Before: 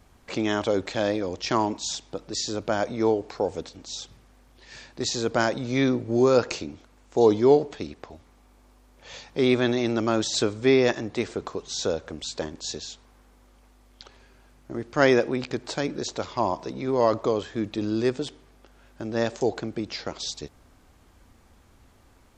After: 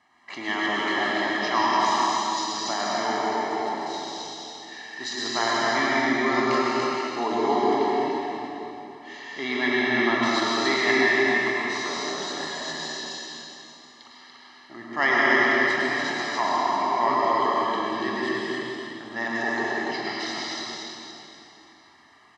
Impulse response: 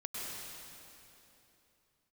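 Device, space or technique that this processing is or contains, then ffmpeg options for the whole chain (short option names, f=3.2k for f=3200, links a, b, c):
station announcement: -filter_complex "[0:a]asettb=1/sr,asplit=3[a][b][c];[a]atrim=end=9.384[d];[b]atrim=start=9.38:end=10.51,asetpts=PTS-STARTPTS,afade=t=in:d=0.004:c=qsin,afade=t=out:st=1.126:d=0.004:c=qsin,lowpass=6.3k[e];[c]atrim=start=10.506[f];[d][e]acrossfade=d=0.004:c1=hsin:c2=qsin[g];[g][f]acrossfade=d=0.004:c1=qsin:c2=hsin,highpass=430,lowpass=4.5k,equalizer=f=1.7k:t=o:w=0.36:g=9,aecho=1:1:1:0.94,asplit=2[h][i];[i]adelay=25,volume=-12dB[j];[h][j]amix=inputs=2:normalize=0,aecho=1:1:43.73|288.6:0.355|0.708[k];[1:a]atrim=start_sample=2205[l];[k][l]afir=irnorm=-1:irlink=0"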